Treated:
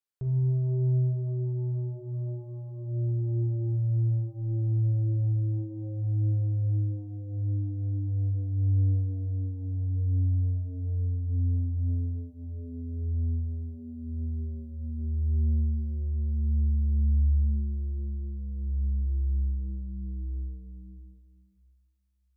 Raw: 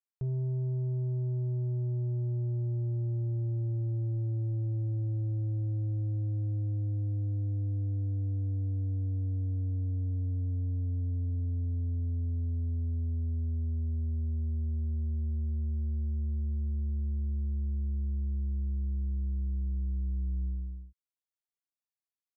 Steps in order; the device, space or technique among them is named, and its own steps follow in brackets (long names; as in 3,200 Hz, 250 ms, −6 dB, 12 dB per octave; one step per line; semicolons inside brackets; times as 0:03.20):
stairwell (convolution reverb RT60 2.0 s, pre-delay 6 ms, DRR 1 dB)